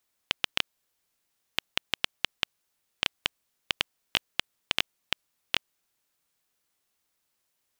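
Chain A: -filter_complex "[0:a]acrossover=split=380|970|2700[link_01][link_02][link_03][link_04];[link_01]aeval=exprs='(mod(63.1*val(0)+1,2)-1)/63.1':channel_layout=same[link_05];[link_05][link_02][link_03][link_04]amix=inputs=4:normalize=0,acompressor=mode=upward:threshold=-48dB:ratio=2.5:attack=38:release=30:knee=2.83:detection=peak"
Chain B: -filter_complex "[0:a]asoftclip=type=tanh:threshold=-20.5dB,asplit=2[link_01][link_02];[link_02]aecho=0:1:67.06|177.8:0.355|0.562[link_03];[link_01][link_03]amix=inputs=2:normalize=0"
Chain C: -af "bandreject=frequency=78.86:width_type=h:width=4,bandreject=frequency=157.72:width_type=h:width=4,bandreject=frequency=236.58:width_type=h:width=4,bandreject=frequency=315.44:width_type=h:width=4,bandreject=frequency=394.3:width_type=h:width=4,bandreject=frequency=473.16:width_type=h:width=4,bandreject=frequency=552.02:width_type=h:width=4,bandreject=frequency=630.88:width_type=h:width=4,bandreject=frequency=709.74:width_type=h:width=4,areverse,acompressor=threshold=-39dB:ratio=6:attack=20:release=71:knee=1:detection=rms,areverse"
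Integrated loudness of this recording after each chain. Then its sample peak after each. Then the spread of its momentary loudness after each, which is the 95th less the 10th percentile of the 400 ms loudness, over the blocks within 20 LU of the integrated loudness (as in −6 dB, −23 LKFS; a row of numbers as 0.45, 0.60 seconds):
−31.5, −40.5, −43.5 LKFS; −5.5, −20.5, −19.5 dBFS; 5, 7, 4 LU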